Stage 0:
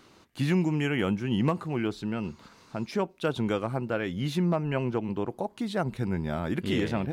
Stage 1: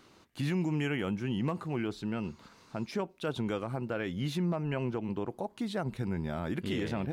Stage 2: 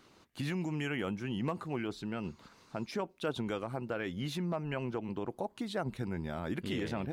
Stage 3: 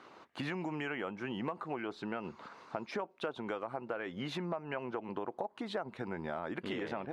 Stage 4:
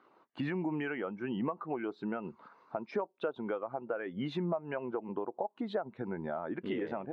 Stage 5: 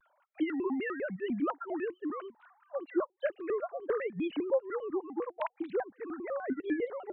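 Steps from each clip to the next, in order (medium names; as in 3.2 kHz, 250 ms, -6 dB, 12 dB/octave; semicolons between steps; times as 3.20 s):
peak limiter -20.5 dBFS, peak gain reduction 4.5 dB; trim -3 dB
harmonic-percussive split harmonic -5 dB
band-pass filter 920 Hz, Q 0.79; compression, threshold -45 dBFS, peak gain reduction 13 dB; trim +10.5 dB
spectral contrast expander 1.5:1
formants replaced by sine waves; vibrato with a chosen wave square 5 Hz, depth 250 cents; trim +2 dB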